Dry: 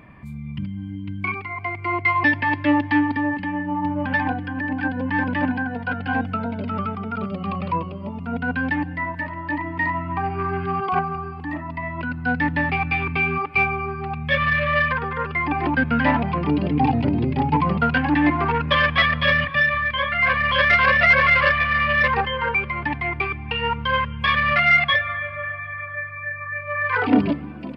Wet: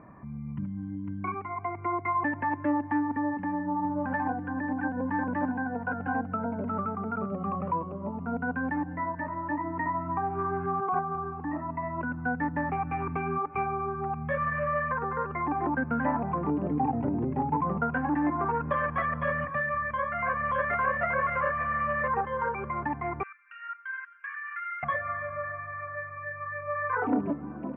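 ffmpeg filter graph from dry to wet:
ffmpeg -i in.wav -filter_complex "[0:a]asettb=1/sr,asplit=3[link_01][link_02][link_03];[link_01]atrim=end=23.234[link_04];[link_02]atrim=start=23.23:end=24.83,asetpts=PTS-STARTPTS,afade=type=in:duration=0.004:curve=qsin,afade=type=out:start_time=1.596:duration=0.004:curve=qsin,asuperpass=centerf=2000:order=12:qfactor=1.2,acompressor=threshold=-25dB:ratio=2.5:attack=3.2:release=140:knee=1:detection=peak,aemphasis=mode=reproduction:type=riaa[link_05];[link_03]atrim=start=24.826[link_06];[link_04][link_05]acrossfade=duration=0.004:curve1=hsin:curve2=qsin[link_07];[link_07][link_06]acrossfade=duration=0.004:curve1=qsin:curve2=hsin,lowpass=frequency=1400:width=0.5412,lowpass=frequency=1400:width=1.3066,lowshelf=frequency=130:gain=-11.5,acompressor=threshold=-29dB:ratio=2" out.wav

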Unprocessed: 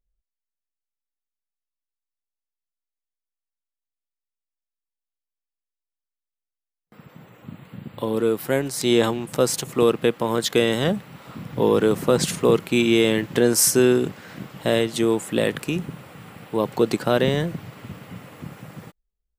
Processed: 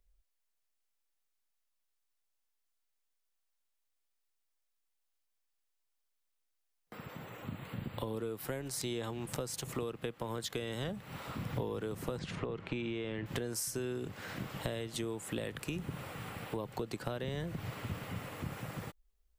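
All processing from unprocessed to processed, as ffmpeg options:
ffmpeg -i in.wav -filter_complex "[0:a]asettb=1/sr,asplit=3[link_01][link_02][link_03];[link_01]atrim=end=12.194[link_04];[link_02]atrim=start=12.19:end=13.26,asetpts=PTS-STARTPTS,afade=type=in:duration=0.004:curve=qsin,afade=type=out:start_time=1.066:duration=0.004:curve=qsin,lowpass=2900,acompressor=threshold=-18dB:ratio=6:attack=3.2:release=140:knee=1:detection=peak[link_05];[link_03]atrim=start=13.256[link_06];[link_04][link_05]acrossfade=duration=0.004:curve1=hsin:curve2=qsin[link_07];[link_07][link_06]acrossfade=duration=0.004:curve1=qsin:curve2=hsin,acompressor=threshold=-28dB:ratio=4,equalizer=frequency=160:width_type=o:width=1.6:gain=-8,acrossover=split=150[link_08][link_09];[link_09]acompressor=threshold=-55dB:ratio=2[link_10];[link_08][link_10]amix=inputs=2:normalize=0,volume=6.5dB" out.wav

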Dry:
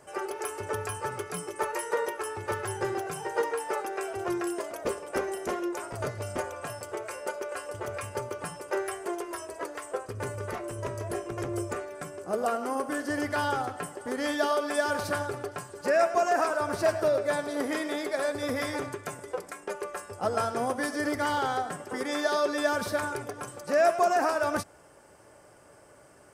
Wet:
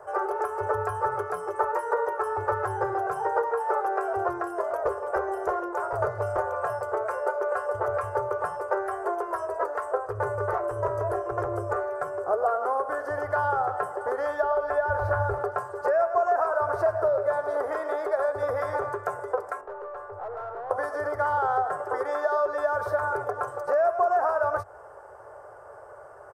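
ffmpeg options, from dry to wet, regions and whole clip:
ffmpeg -i in.wav -filter_complex "[0:a]asettb=1/sr,asplit=3[link_01][link_02][link_03];[link_01]atrim=end=14.424[link_04];[link_02]atrim=start=14.42:end=15.38,asetpts=PTS-STARTPTS,afade=type=in:duration=0.004:curve=qsin,afade=type=out:start_time=0.956:duration=0.004:curve=qsin,acrossover=split=3000[link_05][link_06];[link_06]acompressor=threshold=-48dB:ratio=4:attack=1:release=60[link_07];[link_05][link_07]amix=inputs=2:normalize=0,lowshelf=frequency=110:width_type=q:width=1.5:gain=14,bandreject=frequency=1200:width=16[link_08];[link_03]atrim=start=15.376[link_09];[link_04][link_08]acrossfade=duration=0.004:curve1=hsin:curve2=qsin[link_10];[link_10][link_09]acrossfade=duration=0.004:curve1=qsin:curve2=hsin,asettb=1/sr,asplit=3[link_11][link_12][link_13];[link_11]atrim=end=19.614[link_14];[link_12]atrim=start=19.61:end=20.71,asetpts=PTS-STARTPTS,afade=type=in:duration=0.004:curve=qsin,afade=type=out:start_time=1.096:duration=0.004:curve=qsin,lowpass=frequency=1300:poles=1,acompressor=threshold=-41dB:ratio=2:attack=3.2:release=140:knee=1:detection=peak,aeval=exprs='(tanh(141*val(0)+0.25)-tanh(0.25))/141':channel_layout=same[link_15];[link_13]atrim=start=20.706[link_16];[link_14][link_15]acrossfade=duration=0.004:curve1=hsin:curve2=qsin[link_17];[link_17][link_16]acrossfade=duration=0.004:curve1=qsin:curve2=hsin,highshelf=frequency=9300:gain=12,acrossover=split=140[link_18][link_19];[link_19]acompressor=threshold=-32dB:ratio=6[link_20];[link_18][link_20]amix=inputs=2:normalize=0,firequalizer=gain_entry='entry(100,0);entry(220,-24);entry(410,5);entry(720,9);entry(1400,7);entry(2300,-14);entry(3400,-17);entry(5100,-17);entry(9200,-20)':delay=0.05:min_phase=1,volume=3.5dB" out.wav

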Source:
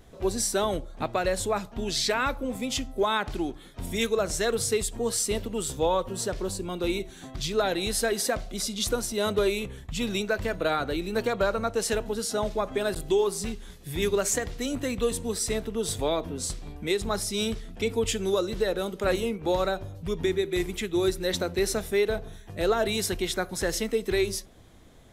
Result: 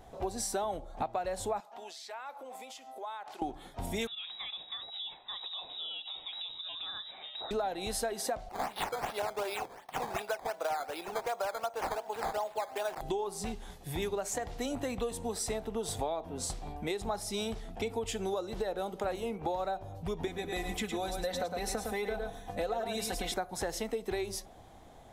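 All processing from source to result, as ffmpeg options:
ffmpeg -i in.wav -filter_complex "[0:a]asettb=1/sr,asplit=3[link_01][link_02][link_03];[link_01]atrim=end=1.604[link_04];[link_02]atrim=start=1.6:end=3.42,asetpts=PTS-STARTPTS,afade=type=in:duration=0.004:curve=qsin,afade=type=out:start_time=1.816:duration=0.004:curve=qsin,highpass=620,acompressor=threshold=-45dB:ratio=4:attack=3.2:release=140:knee=1:detection=peak[link_05];[link_03]atrim=start=3.416[link_06];[link_04][link_05]acrossfade=duration=0.004:curve1=hsin:curve2=qsin[link_07];[link_07][link_06]acrossfade=duration=0.004:curve1=qsin:curve2=hsin,asettb=1/sr,asplit=3[link_08][link_09][link_10];[link_08]atrim=end=4.074[link_11];[link_09]atrim=start=4.07:end=7.51,asetpts=PTS-STARTPTS,afade=type=in:duration=0.004:curve=qsin,afade=type=out:start_time=3.436:duration=0.004:curve=qsin,acompressor=threshold=-34dB:ratio=8:attack=3.2:release=140:knee=1:detection=peak,lowpass=frequency=3300:width_type=q:width=0.5098,lowpass=frequency=3300:width_type=q:width=0.6013,lowpass=frequency=3300:width_type=q:width=0.9,lowpass=frequency=3300:width_type=q:width=2.563,afreqshift=-3900[link_12];[link_10]atrim=start=7.506[link_13];[link_11][link_12]acrossfade=duration=0.004:curve1=hsin:curve2=qsin[link_14];[link_14][link_13]acrossfade=duration=0.004:curve1=qsin:curve2=hsin,asettb=1/sr,asplit=3[link_15][link_16][link_17];[link_15]atrim=end=8.494[link_18];[link_16]atrim=start=8.49:end=13.01,asetpts=PTS-STARTPTS,afade=type=in:duration=0.004:curve=qsin,afade=type=out:start_time=4.516:duration=0.004:curve=qsin,highpass=600,acrusher=samples=11:mix=1:aa=0.000001:lfo=1:lforange=11:lforate=2.7[link_19];[link_17]atrim=start=13.006[link_20];[link_18][link_19]acrossfade=duration=0.004:curve1=hsin:curve2=qsin[link_21];[link_21][link_20]acrossfade=duration=0.004:curve1=qsin:curve2=hsin,asettb=1/sr,asplit=3[link_22][link_23][link_24];[link_22]atrim=end=20.274[link_25];[link_23]atrim=start=20.27:end=23.34,asetpts=PTS-STARTPTS,afade=type=in:duration=0.004:curve=qsin,afade=type=out:start_time=3.066:duration=0.004:curve=qsin,aecho=1:1:109:0.422,atrim=end_sample=135387,acompressor=threshold=-28dB:ratio=1.5:attack=3.2:release=140:knee=1:detection=peak,aecho=1:1:4:0.75,atrim=end_sample=135387[link_26];[link_24]atrim=start=23.336[link_27];[link_25][link_26]acrossfade=duration=0.004:curve1=hsin:curve2=qsin[link_28];[link_28][link_27]acrossfade=duration=0.004:curve1=qsin:curve2=hsin,equalizer=frequency=780:width=2:gain=14.5,acompressor=threshold=-28dB:ratio=6,volume=-3.5dB" out.wav

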